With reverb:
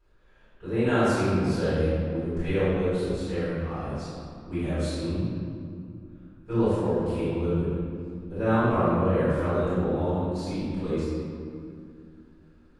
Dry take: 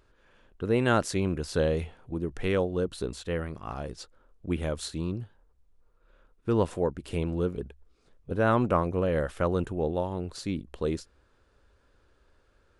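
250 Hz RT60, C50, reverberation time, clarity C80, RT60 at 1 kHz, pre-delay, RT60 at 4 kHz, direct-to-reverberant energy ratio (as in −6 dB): 3.3 s, −5.0 dB, 2.3 s, −1.5 dB, 2.2 s, 3 ms, 1.4 s, −17.0 dB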